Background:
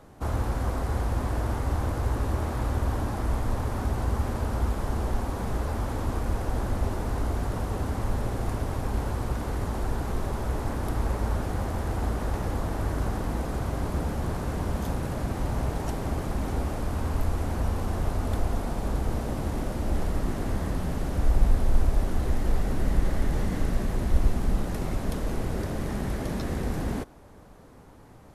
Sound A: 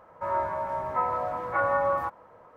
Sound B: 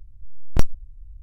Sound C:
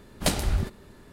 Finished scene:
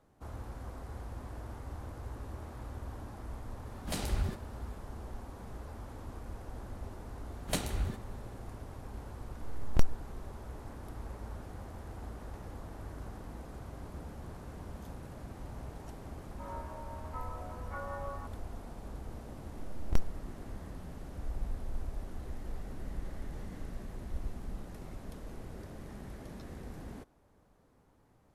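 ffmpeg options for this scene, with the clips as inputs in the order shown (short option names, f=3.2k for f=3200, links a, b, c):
-filter_complex "[3:a]asplit=2[a][b];[2:a]asplit=2[c][d];[0:a]volume=-16dB[e];[a]alimiter=limit=-14.5dB:level=0:latency=1:release=69[f];[b]bandreject=f=5k:w=8.8[g];[f]atrim=end=1.12,asetpts=PTS-STARTPTS,volume=-7dB,afade=t=in:d=0.004:c=hsin,afade=t=out:st=1.116:d=0.004:c=hsin,adelay=3660[h];[g]atrim=end=1.12,asetpts=PTS-STARTPTS,volume=-8.5dB,afade=t=in:d=0.004:c=hsin,afade=t=out:st=1.116:d=0.004:c=hsin,adelay=7270[i];[c]atrim=end=1.22,asetpts=PTS-STARTPTS,volume=-8dB,afade=t=in:d=0.004:c=hsin,afade=t=out:st=1.216:d=0.004:c=hsin,adelay=9200[j];[1:a]atrim=end=2.56,asetpts=PTS-STARTPTS,volume=-17dB,afade=t=in:d=0.004:c=hsin,afade=t=out:st=2.556:d=0.004:c=hsin,adelay=16180[k];[d]atrim=end=1.22,asetpts=PTS-STARTPTS,volume=-12dB,afade=t=in:d=0.004:c=hsin,afade=t=out:st=1.216:d=0.004:c=hsin,adelay=19360[l];[e][h][i][j][k][l]amix=inputs=6:normalize=0"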